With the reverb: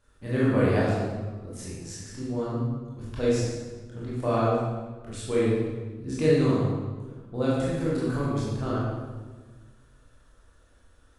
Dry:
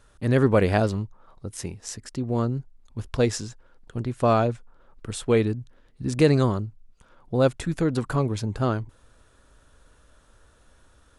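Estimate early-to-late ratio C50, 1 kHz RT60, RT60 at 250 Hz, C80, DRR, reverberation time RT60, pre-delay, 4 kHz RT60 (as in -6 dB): -2.0 dB, 1.3 s, 1.8 s, 1.0 dB, -8.0 dB, 1.4 s, 19 ms, 1.0 s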